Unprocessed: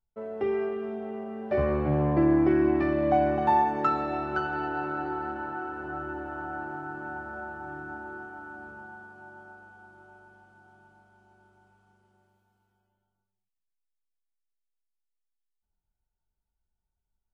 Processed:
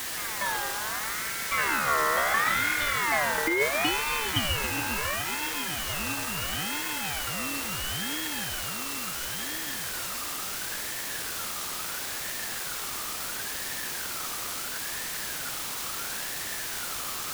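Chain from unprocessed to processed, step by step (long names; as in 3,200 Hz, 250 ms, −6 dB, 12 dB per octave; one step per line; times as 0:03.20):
rippled gain that drifts along the octave scale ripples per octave 0.65, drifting −0.61 Hz, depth 8 dB
0:01.68–0:02.34: comb filter 1.5 ms, depth 81%
background noise pink −37 dBFS
high-shelf EQ 2,600 Hz +11.5 dB
delay with a band-pass on its return 137 ms, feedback 71%, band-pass 1,500 Hz, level −8.5 dB
compressor whose output falls as the input rises −18 dBFS, ratio −0.5
ring modulator whose carrier an LFO sweeps 1,500 Hz, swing 20%, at 0.73 Hz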